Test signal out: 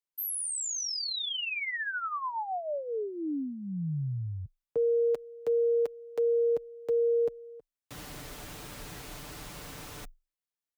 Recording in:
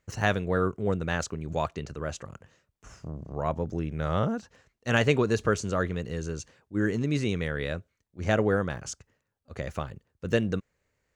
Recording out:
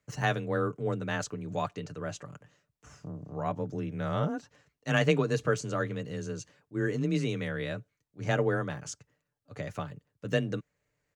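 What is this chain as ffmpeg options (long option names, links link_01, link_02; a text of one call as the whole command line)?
ffmpeg -i in.wav -af "afreqshift=21,aecho=1:1:6.8:0.47,volume=-4dB" out.wav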